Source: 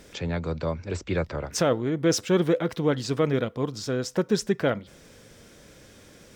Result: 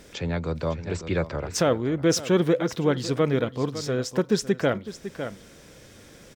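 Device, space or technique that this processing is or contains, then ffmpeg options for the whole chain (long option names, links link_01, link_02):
ducked delay: -filter_complex "[0:a]asplit=3[link_01][link_02][link_03];[link_02]adelay=555,volume=-6dB[link_04];[link_03]apad=whole_len=304563[link_05];[link_04][link_05]sidechaincompress=threshold=-29dB:ratio=4:attack=8.8:release=801[link_06];[link_01][link_06]amix=inputs=2:normalize=0,volume=1dB"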